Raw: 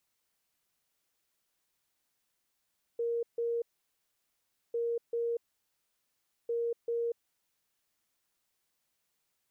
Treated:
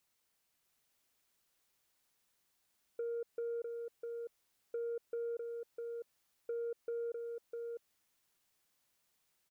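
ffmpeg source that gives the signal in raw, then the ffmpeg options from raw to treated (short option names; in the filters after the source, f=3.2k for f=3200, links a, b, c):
-f lavfi -i "aevalsrc='0.0355*sin(2*PI*468*t)*clip(min(mod(mod(t,1.75),0.39),0.24-mod(mod(t,1.75),0.39))/0.005,0,1)*lt(mod(t,1.75),0.78)':d=5.25:s=44100"
-af "acompressor=threshold=-36dB:ratio=6,asoftclip=type=tanh:threshold=-33dB,aecho=1:1:652:0.631"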